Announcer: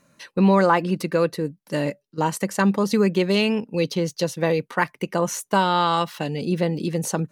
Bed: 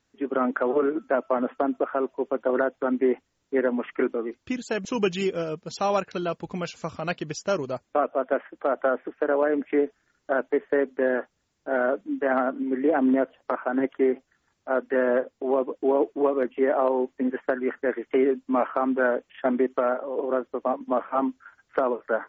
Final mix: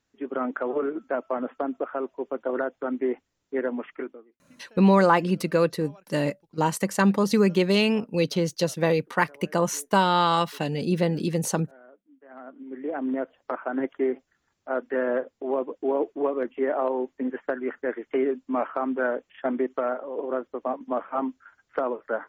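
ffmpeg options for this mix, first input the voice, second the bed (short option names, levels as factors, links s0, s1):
-filter_complex "[0:a]adelay=4400,volume=0.891[s0];[1:a]volume=11.2,afade=t=out:st=3.79:d=0.46:silence=0.0630957,afade=t=in:st=12.27:d=1.33:silence=0.0562341[s1];[s0][s1]amix=inputs=2:normalize=0"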